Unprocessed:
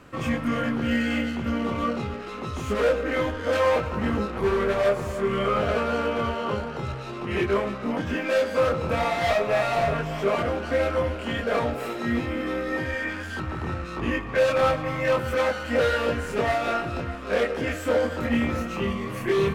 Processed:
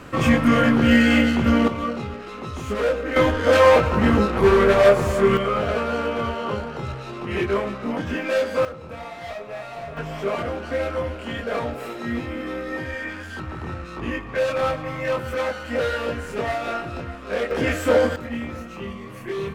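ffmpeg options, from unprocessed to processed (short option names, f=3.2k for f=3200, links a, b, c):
-af "asetnsamples=n=441:p=0,asendcmd='1.68 volume volume 0dB;3.16 volume volume 8dB;5.37 volume volume 1dB;8.65 volume volume -11dB;9.97 volume volume -1.5dB;17.51 volume volume 5.5dB;18.16 volume volume -6dB',volume=9dB"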